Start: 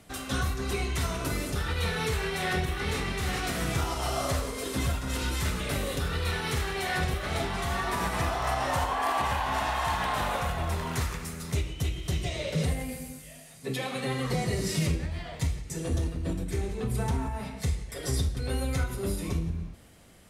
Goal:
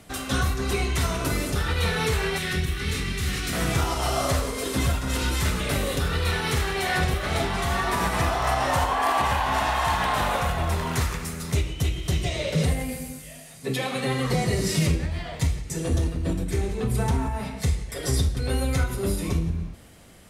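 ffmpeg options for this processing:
-filter_complex "[0:a]asettb=1/sr,asplit=3[s0][s1][s2];[s0]atrim=end=2.384[s3];[s1]atrim=start=2.38:end=3.53,asetpts=PTS-STARTPTS,afade=t=in:d=0.004:c=qsin,afade=t=out:st=1.146:d=0.004:c=qsin,equalizer=f=730:w=0.91:g=-14.5[s4];[s2]atrim=start=3.526[s5];[s3][s4]acrossfade=d=0.004:c1=hsin:c2=qsin[s6];[s6][s5]acrossfade=d=0.004:c1=qsin:c2=hsin,volume=1.78"

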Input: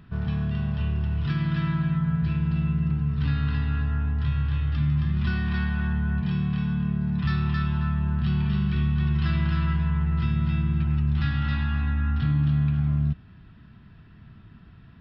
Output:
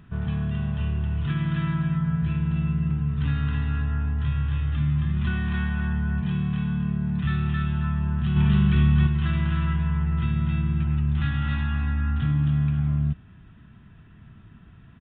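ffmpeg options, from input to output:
-filter_complex "[0:a]asettb=1/sr,asplit=3[s0][s1][s2];[s0]atrim=end=7.204[s3];[s1]atrim=start=7.2:end=7.84,asetpts=PTS-STARTPTS,afade=t=in:d=0.004:c=qsin,afade=t=out:st=0.636:d=0.004:c=qsin,equalizer=f=1000:t=o:w=0.27:g=-9[s4];[s2]atrim=start=7.836[s5];[s3][s4]acrossfade=d=0.004:c1=hsin:c2=qsin[s6];[s6][s5]acrossfade=d=0.004:c1=qsin:c2=hsin,asettb=1/sr,asplit=3[s7][s8][s9];[s7]atrim=end=8.364[s10];[s8]atrim=start=8.36:end=9.07,asetpts=PTS-STARTPTS,afade=t=in:d=0.004:c=qsin,afade=t=out:st=0.706:d=0.004:c=qsin,acontrast=34[s11];[s9]atrim=start=9.066[s12];[s10][s11]acrossfade=d=0.004:c1=hsin:c2=qsin[s13];[s13][s12]acrossfade=d=0.004:c1=qsin:c2=hsin,aresample=8000,aresample=44100"

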